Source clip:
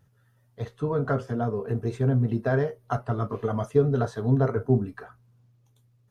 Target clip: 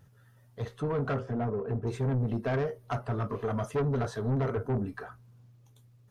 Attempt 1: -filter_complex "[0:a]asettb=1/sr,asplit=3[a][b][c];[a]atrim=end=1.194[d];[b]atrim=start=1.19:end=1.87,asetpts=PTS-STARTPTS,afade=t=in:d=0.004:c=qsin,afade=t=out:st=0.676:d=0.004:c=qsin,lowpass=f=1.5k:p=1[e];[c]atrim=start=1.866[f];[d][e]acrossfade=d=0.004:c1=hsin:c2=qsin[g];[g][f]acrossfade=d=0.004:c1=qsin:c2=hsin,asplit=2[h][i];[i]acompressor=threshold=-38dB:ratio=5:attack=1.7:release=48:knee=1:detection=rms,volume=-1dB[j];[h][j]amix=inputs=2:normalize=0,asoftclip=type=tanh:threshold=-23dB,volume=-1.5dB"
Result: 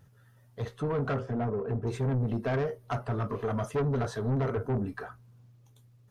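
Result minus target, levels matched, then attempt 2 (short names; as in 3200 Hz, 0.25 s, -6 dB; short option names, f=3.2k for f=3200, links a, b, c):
compressor: peak gain reduction -6.5 dB
-filter_complex "[0:a]asettb=1/sr,asplit=3[a][b][c];[a]atrim=end=1.194[d];[b]atrim=start=1.19:end=1.87,asetpts=PTS-STARTPTS,afade=t=in:d=0.004:c=qsin,afade=t=out:st=0.676:d=0.004:c=qsin,lowpass=f=1.5k:p=1[e];[c]atrim=start=1.866[f];[d][e]acrossfade=d=0.004:c1=hsin:c2=qsin[g];[g][f]acrossfade=d=0.004:c1=qsin:c2=hsin,asplit=2[h][i];[i]acompressor=threshold=-46dB:ratio=5:attack=1.7:release=48:knee=1:detection=rms,volume=-1dB[j];[h][j]amix=inputs=2:normalize=0,asoftclip=type=tanh:threshold=-23dB,volume=-1.5dB"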